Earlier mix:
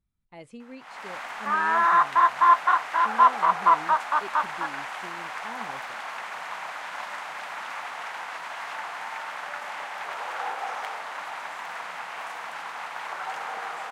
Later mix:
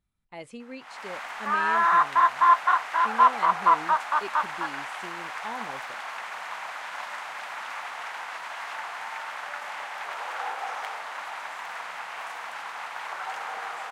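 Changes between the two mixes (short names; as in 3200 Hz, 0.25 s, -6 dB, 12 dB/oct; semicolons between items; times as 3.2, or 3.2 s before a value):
speech +6.0 dB; master: add low shelf 370 Hz -7 dB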